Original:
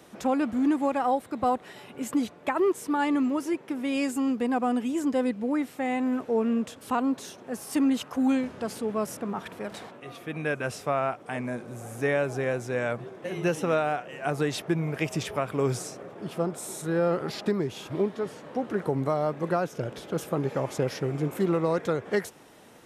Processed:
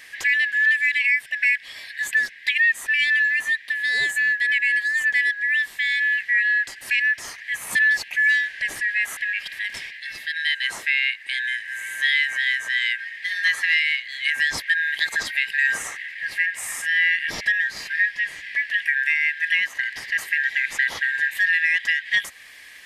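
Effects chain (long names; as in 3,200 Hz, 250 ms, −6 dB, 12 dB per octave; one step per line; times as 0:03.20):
band-splitting scrambler in four parts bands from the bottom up 4123
in parallel at −2.5 dB: downward compressor, threshold −36 dBFS, peak gain reduction 15 dB
on the sum: level +3.5 dB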